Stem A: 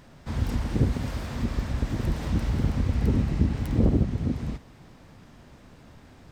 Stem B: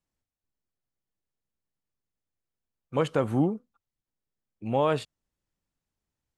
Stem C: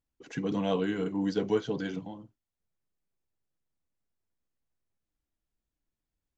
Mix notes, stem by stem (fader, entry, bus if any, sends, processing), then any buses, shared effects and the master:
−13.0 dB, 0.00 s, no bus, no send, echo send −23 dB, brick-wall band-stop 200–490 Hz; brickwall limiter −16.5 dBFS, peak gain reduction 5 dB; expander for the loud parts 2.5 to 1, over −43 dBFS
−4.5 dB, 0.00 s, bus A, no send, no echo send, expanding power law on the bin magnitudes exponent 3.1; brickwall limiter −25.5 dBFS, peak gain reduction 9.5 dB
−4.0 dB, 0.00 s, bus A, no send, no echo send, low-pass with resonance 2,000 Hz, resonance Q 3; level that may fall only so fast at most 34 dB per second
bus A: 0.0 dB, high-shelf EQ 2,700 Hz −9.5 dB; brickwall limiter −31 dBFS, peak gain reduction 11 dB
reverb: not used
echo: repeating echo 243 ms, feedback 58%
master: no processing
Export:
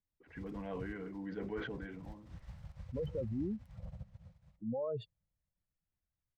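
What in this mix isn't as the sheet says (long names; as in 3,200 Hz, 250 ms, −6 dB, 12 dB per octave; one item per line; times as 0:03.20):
stem A −13.0 dB → −19.5 dB
stem C −4.0 dB → −14.0 dB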